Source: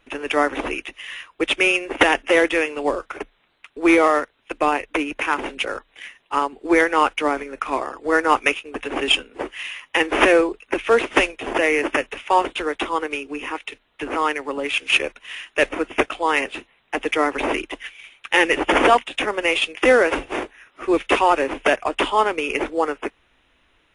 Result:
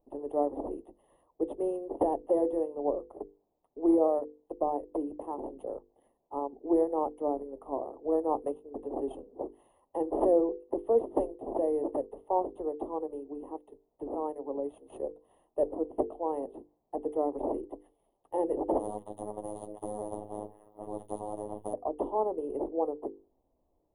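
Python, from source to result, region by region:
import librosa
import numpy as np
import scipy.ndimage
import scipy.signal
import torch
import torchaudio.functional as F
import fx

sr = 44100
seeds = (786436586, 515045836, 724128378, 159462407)

y = fx.chain(x, sr, fx.robotise(hz=105.0),
    fx.spectral_comp(ratio=4.0), at=(18.79, 21.74))
y = scipy.signal.sosfilt(scipy.signal.cheby2(4, 40, [1400.0, 8300.0], 'bandstop', fs=sr, output='sos'), y)
y = fx.bass_treble(y, sr, bass_db=-4, treble_db=2)
y = fx.hum_notches(y, sr, base_hz=50, count=10)
y = F.gain(torch.from_numpy(y), -6.5).numpy()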